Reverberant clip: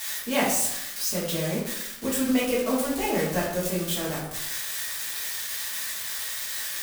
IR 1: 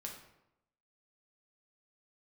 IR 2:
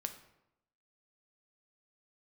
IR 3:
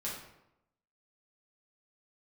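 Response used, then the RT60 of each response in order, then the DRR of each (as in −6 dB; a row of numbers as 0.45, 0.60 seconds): 3; 0.85, 0.85, 0.85 seconds; −0.5, 6.5, −6.5 decibels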